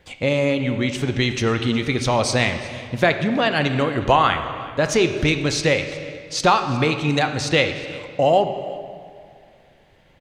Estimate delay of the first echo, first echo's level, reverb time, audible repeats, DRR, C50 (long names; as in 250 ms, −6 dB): 363 ms, −21.0 dB, 2.2 s, 1, 7.0 dB, 8.5 dB